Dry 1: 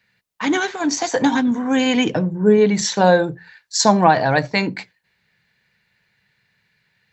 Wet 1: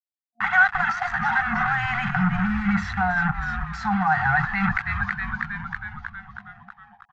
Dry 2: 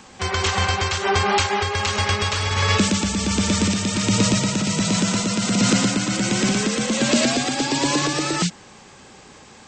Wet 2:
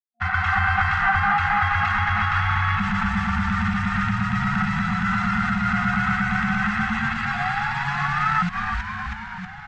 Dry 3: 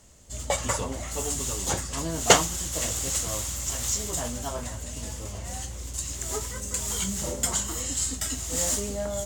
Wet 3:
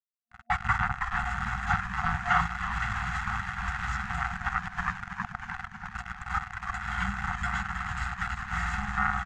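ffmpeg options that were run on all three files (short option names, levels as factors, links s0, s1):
-filter_complex "[0:a]acrusher=bits=3:mix=0:aa=0.5,areverse,acompressor=threshold=0.0282:ratio=10,areverse,aecho=1:1:1.5:0.54,asplit=9[s0][s1][s2][s3][s4][s5][s6][s7][s8];[s1]adelay=319,afreqshift=-120,volume=0.251[s9];[s2]adelay=638,afreqshift=-240,volume=0.16[s10];[s3]adelay=957,afreqshift=-360,volume=0.102[s11];[s4]adelay=1276,afreqshift=-480,volume=0.0661[s12];[s5]adelay=1595,afreqshift=-600,volume=0.0422[s13];[s6]adelay=1914,afreqshift=-720,volume=0.0269[s14];[s7]adelay=2233,afreqshift=-840,volume=0.0172[s15];[s8]adelay=2552,afreqshift=-960,volume=0.0111[s16];[s0][s9][s10][s11][s12][s13][s14][s15][s16]amix=inputs=9:normalize=0,dynaudnorm=f=340:g=3:m=3.35,alimiter=limit=0.0944:level=0:latency=1:release=84,afftfilt=real='re*(1-between(b*sr/4096,230,710))':imag='im*(1-between(b*sr/4096,230,710))':win_size=4096:overlap=0.75,lowpass=f=1600:t=q:w=3.4,volume=2.24"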